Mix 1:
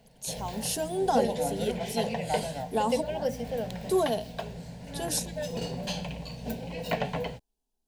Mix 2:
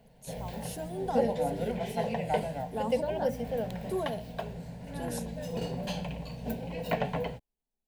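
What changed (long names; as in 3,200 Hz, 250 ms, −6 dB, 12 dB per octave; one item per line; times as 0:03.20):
first voice −7.5 dB
second voice +7.0 dB
master: add parametric band 5,500 Hz −7.5 dB 1.8 octaves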